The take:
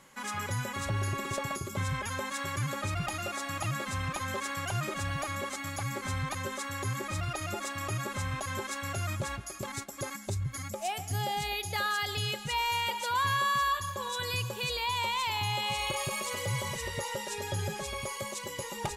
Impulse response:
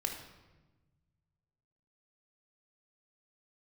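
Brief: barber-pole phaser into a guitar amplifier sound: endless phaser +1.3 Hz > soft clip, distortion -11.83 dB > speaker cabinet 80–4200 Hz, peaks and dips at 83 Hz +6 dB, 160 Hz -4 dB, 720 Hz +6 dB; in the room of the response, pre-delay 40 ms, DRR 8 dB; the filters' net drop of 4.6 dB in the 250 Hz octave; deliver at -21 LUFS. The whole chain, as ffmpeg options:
-filter_complex "[0:a]equalizer=f=250:t=o:g=-5.5,asplit=2[a][b];[1:a]atrim=start_sample=2205,adelay=40[c];[b][c]afir=irnorm=-1:irlink=0,volume=-10dB[d];[a][d]amix=inputs=2:normalize=0,asplit=2[e][f];[f]afreqshift=1.3[g];[e][g]amix=inputs=2:normalize=1,asoftclip=threshold=-33dB,highpass=80,equalizer=f=83:t=q:w=4:g=6,equalizer=f=160:t=q:w=4:g=-4,equalizer=f=720:t=q:w=4:g=6,lowpass=f=4.2k:w=0.5412,lowpass=f=4.2k:w=1.3066,volume=17.5dB"

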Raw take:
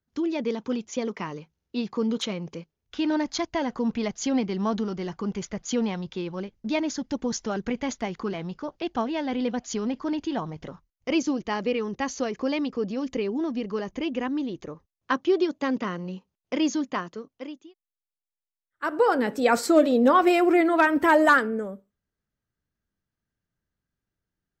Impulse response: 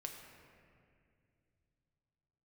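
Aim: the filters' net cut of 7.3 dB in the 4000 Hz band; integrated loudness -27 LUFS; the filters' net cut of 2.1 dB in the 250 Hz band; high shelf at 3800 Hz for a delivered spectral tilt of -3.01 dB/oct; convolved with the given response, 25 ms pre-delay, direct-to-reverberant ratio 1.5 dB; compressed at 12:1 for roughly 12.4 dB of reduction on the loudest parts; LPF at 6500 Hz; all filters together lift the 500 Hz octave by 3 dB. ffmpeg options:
-filter_complex "[0:a]lowpass=6.5k,equalizer=f=250:t=o:g=-5,equalizer=f=500:t=o:g=5.5,highshelf=f=3.8k:g=-7.5,equalizer=f=4k:t=o:g=-5,acompressor=threshold=-24dB:ratio=12,asplit=2[a][b];[1:a]atrim=start_sample=2205,adelay=25[c];[b][c]afir=irnorm=-1:irlink=0,volume=1.5dB[d];[a][d]amix=inputs=2:normalize=0,volume=2dB"

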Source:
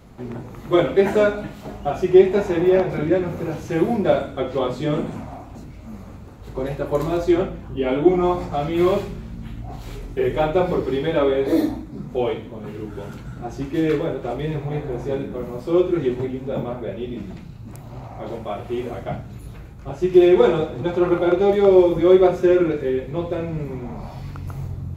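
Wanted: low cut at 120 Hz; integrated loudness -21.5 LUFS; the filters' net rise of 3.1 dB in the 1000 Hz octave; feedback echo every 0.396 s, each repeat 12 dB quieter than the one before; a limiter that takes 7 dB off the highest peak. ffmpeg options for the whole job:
-af "highpass=120,equalizer=f=1k:t=o:g=4.5,alimiter=limit=-8.5dB:level=0:latency=1,aecho=1:1:396|792|1188:0.251|0.0628|0.0157"

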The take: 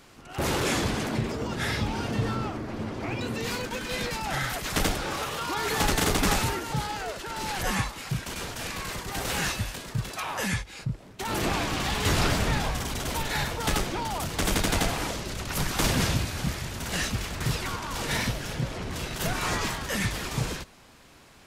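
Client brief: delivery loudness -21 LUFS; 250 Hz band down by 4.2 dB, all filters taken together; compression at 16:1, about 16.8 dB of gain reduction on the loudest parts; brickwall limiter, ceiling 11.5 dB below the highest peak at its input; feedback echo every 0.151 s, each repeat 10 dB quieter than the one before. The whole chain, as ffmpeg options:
-af "equalizer=f=250:t=o:g=-6,acompressor=threshold=-38dB:ratio=16,alimiter=level_in=12dB:limit=-24dB:level=0:latency=1,volume=-12dB,aecho=1:1:151|302|453|604:0.316|0.101|0.0324|0.0104,volume=23.5dB"

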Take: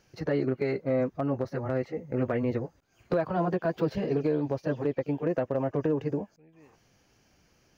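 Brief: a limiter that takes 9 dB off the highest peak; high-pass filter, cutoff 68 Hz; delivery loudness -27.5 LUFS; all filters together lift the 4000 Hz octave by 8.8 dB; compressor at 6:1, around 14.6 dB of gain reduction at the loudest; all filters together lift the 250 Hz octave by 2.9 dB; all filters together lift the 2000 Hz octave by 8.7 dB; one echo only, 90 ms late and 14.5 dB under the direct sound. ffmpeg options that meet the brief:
-af "highpass=68,equalizer=f=250:t=o:g=3.5,equalizer=f=2k:t=o:g=9,equalizer=f=4k:t=o:g=8,acompressor=threshold=-37dB:ratio=6,alimiter=level_in=8dB:limit=-24dB:level=0:latency=1,volume=-8dB,aecho=1:1:90:0.188,volume=15dB"

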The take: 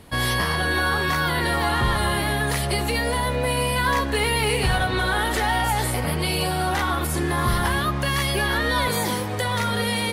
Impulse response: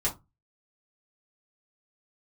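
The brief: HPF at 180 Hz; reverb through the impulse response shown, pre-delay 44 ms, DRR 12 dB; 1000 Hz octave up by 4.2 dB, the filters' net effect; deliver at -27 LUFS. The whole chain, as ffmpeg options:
-filter_complex "[0:a]highpass=180,equalizer=f=1k:t=o:g=5,asplit=2[a][b];[1:a]atrim=start_sample=2205,adelay=44[c];[b][c]afir=irnorm=-1:irlink=0,volume=-19dB[d];[a][d]amix=inputs=2:normalize=0,volume=-6dB"

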